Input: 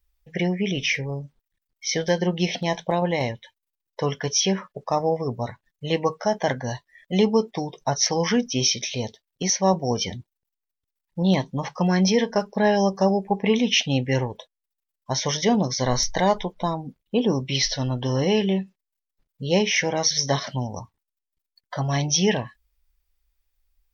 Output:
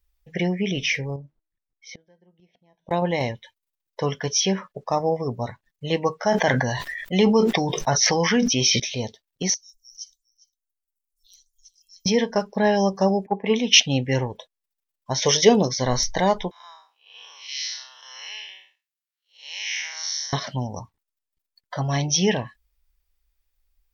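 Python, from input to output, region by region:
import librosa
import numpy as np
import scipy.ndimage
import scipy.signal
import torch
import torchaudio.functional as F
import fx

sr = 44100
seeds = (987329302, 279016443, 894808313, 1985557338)

y = fx.chain(x, sr, fx.lowpass(hz=1400.0, slope=6),
    fx.comb_fb(f0_hz=320.0, decay_s=0.49, harmonics='all', damping=0.0, mix_pct=50),
    fx.gate_flip(shuts_db=-29.0, range_db=-30), at=(1.16, 2.91))
y = fx.chain(y, sr, fx.peak_eq(hz=1900.0, db=5.0, octaves=1.6),
    fx.sustainer(db_per_s=30.0), at=(6.18, 8.8))
y = fx.chain(y, sr, fx.cheby2_bandstop(low_hz=110.0, high_hz=1300.0, order=4, stop_db=80),
    fx.echo_single(ms=404, db=-20.5), at=(9.54, 12.06))
y = fx.chain(y, sr, fx.highpass(hz=210.0, slope=12),
    fx.band_widen(depth_pct=100), at=(13.26, 13.8))
y = fx.chain(y, sr, fx.high_shelf(hz=2400.0, db=9.0),
    fx.small_body(hz=(430.0, 2600.0), ring_ms=20, db=9), at=(15.22, 15.69))
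y = fx.chain(y, sr, fx.spec_blur(span_ms=194.0),
    fx.highpass(hz=1300.0, slope=24), at=(16.51, 20.33))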